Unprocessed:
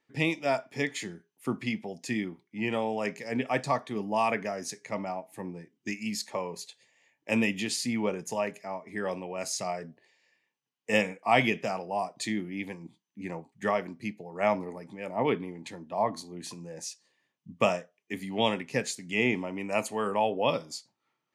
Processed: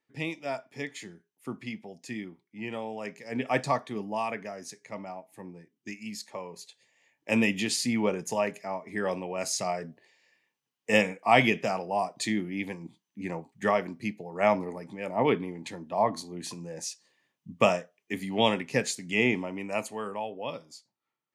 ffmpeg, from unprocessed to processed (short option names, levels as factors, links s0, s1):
-af "volume=3.16,afade=t=in:st=3.23:d=0.33:silence=0.398107,afade=t=out:st=3.56:d=0.72:silence=0.421697,afade=t=in:st=6.52:d=1.02:silence=0.398107,afade=t=out:st=19.08:d=1.19:silence=0.266073"